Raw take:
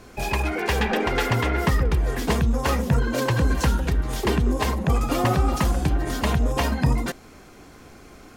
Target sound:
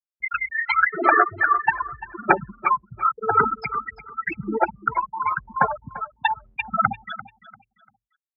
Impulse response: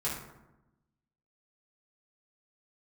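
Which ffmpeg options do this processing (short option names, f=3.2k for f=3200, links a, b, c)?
-filter_complex "[0:a]tiltshelf=f=680:g=-8.5,asetrate=37084,aresample=44100,atempo=1.18921,equalizer=f=1.3k:w=5.1:g=7,aphaser=in_gain=1:out_gain=1:delay=1.1:decay=0.7:speed=0.88:type=sinusoidal,afftfilt=real='re*gte(hypot(re,im),0.562)':imag='im*gte(hypot(re,im),0.562)':win_size=1024:overlap=0.75,highpass=270,lowpass=4k,asplit=2[a][b];[b]aecho=0:1:344|688|1032:0.15|0.0419|0.0117[c];[a][c]amix=inputs=2:normalize=0,volume=-1dB"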